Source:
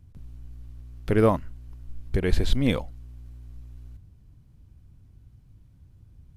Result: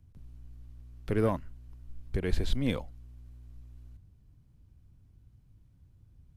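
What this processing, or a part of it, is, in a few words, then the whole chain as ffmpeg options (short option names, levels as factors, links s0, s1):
one-band saturation: -filter_complex "[0:a]acrossover=split=300|3300[s0][s1][s2];[s1]asoftclip=type=tanh:threshold=0.168[s3];[s0][s3][s2]amix=inputs=3:normalize=0,volume=0.473"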